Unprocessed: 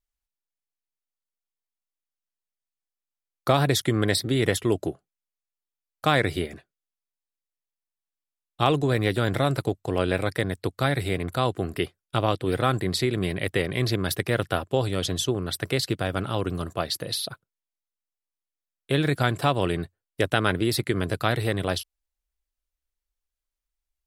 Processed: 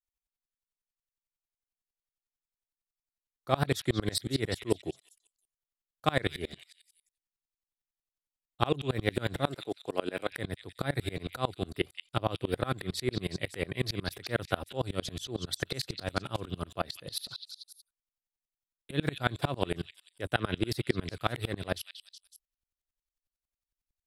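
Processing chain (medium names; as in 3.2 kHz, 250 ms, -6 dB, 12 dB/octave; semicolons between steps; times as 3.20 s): 9.47–10.32 s: high-pass 240 Hz 12 dB/octave; on a send: repeats whose band climbs or falls 185 ms, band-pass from 3.3 kHz, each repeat 0.7 oct, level -4.5 dB; on the sum: sawtooth tremolo in dB swelling 11 Hz, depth 29 dB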